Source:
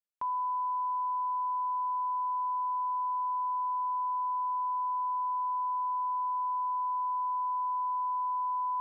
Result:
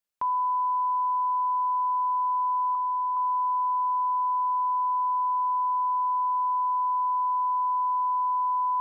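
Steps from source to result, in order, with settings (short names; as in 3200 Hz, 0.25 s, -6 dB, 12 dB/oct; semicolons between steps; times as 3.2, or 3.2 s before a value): 2.75–3.17 steep high-pass 950 Hz 48 dB/oct; gain +6 dB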